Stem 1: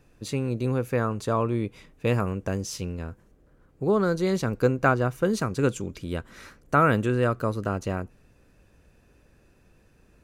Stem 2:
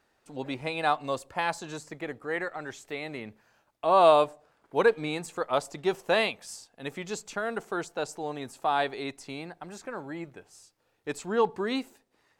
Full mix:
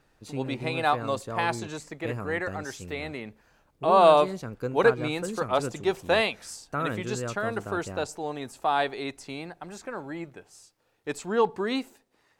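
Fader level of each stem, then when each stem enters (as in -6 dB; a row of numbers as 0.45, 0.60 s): -10.0, +1.5 dB; 0.00, 0.00 s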